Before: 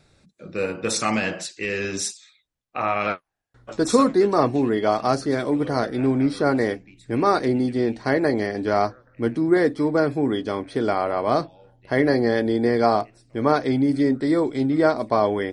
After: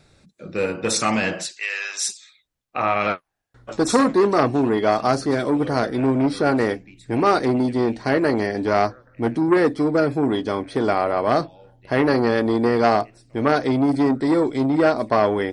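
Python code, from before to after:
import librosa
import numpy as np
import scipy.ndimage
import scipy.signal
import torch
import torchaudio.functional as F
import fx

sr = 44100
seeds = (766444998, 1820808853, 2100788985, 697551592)

y = fx.highpass(x, sr, hz=780.0, slope=24, at=(1.57, 2.09))
y = fx.transformer_sat(y, sr, knee_hz=930.0)
y = F.gain(torch.from_numpy(y), 3.0).numpy()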